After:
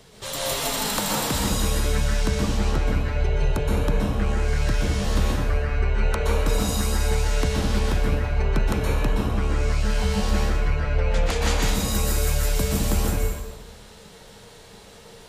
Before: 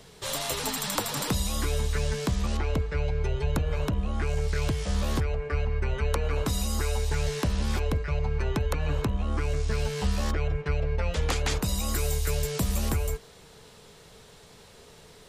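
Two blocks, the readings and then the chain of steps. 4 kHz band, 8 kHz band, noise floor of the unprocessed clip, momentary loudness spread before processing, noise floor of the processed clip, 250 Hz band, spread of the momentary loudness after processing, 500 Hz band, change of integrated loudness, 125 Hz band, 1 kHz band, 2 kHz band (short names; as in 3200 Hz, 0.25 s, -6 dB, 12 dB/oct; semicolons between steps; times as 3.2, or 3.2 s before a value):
+5.0 dB, +5.0 dB, -52 dBFS, 2 LU, -46 dBFS, +6.0 dB, 2 LU, +4.0 dB, +5.0 dB, +3.5 dB, +5.5 dB, +5.5 dB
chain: plate-style reverb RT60 1.2 s, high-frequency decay 0.8×, pre-delay 0.11 s, DRR -4 dB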